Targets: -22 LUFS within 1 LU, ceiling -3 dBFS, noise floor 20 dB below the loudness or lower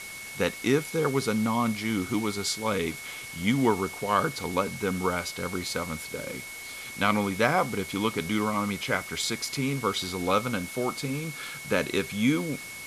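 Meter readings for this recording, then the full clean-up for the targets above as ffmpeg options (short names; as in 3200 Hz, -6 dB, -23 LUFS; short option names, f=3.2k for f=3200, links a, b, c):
steady tone 2200 Hz; tone level -40 dBFS; noise floor -40 dBFS; noise floor target -48 dBFS; loudness -28.0 LUFS; peak -7.0 dBFS; loudness target -22.0 LUFS
-> -af "bandreject=f=2.2k:w=30"
-af "afftdn=nr=8:nf=-40"
-af "volume=6dB,alimiter=limit=-3dB:level=0:latency=1"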